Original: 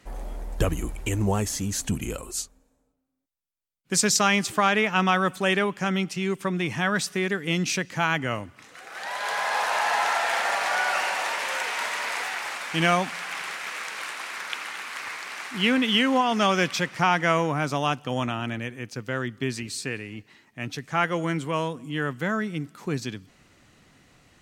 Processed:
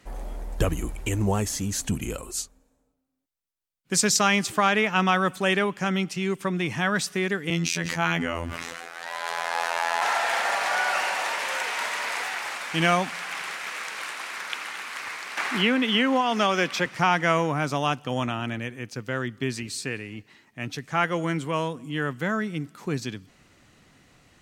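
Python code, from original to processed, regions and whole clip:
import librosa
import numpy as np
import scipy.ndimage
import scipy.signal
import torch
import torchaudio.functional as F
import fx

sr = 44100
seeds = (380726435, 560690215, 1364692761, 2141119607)

y = fx.chain(x, sr, fx.robotise(hz=84.3),
    fx.sustainer(db_per_s=21.0), at=(7.5, 10.02))
y = fx.chain(y, sr, fx.highpass(hz=210.0, slope=12),
    fx.peak_eq(hz=9700.0, db=-5.0, octaves=2.3),
    fx.band_squash(depth_pct=70), at=(15.37, 16.86))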